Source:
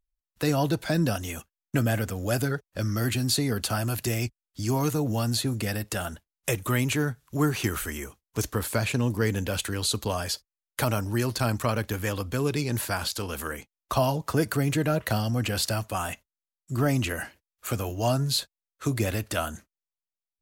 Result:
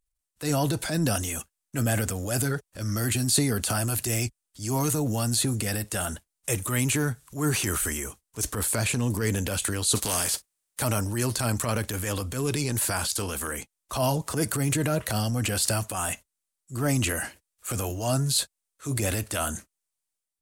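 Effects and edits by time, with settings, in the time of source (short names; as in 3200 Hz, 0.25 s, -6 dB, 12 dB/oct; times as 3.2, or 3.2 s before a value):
9.95–10.8 spectral contrast lowered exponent 0.56
whole clip: bell 8900 Hz +11.5 dB 0.88 oct; transient shaper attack -9 dB, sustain +5 dB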